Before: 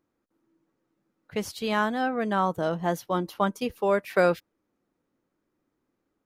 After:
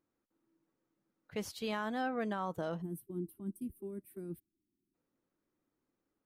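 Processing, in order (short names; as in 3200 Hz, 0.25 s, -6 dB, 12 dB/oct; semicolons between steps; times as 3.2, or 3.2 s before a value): limiter -20 dBFS, peak gain reduction 9.5 dB; spectral gain 2.82–4.94, 400–8000 Hz -27 dB; gain -7.5 dB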